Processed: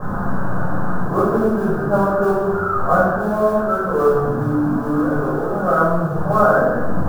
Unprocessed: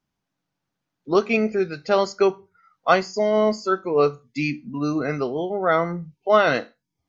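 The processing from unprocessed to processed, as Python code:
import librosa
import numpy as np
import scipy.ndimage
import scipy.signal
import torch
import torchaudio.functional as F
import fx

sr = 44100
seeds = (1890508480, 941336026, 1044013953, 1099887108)

y = fx.delta_mod(x, sr, bps=16000, step_db=-20.0)
y = scipy.signal.sosfilt(scipy.signal.butter(16, 1600.0, 'lowpass', fs=sr, output='sos'), y)
y = fx.mod_noise(y, sr, seeds[0], snr_db=31)
y = fx.room_shoebox(y, sr, seeds[1], volume_m3=690.0, walls='mixed', distance_m=5.8)
y = y * 10.0 ** (-8.0 / 20.0)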